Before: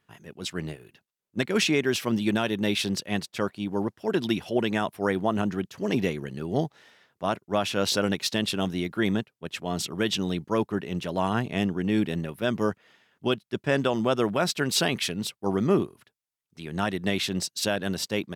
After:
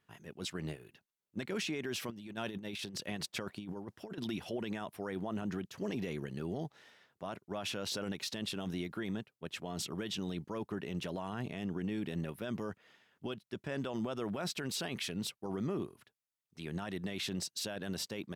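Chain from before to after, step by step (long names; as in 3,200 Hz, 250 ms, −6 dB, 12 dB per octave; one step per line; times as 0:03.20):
brickwall limiter −23.5 dBFS, peak gain reduction 11.5 dB
0:02.10–0:04.18: compressor whose output falls as the input rises −36 dBFS, ratio −0.5
level −5 dB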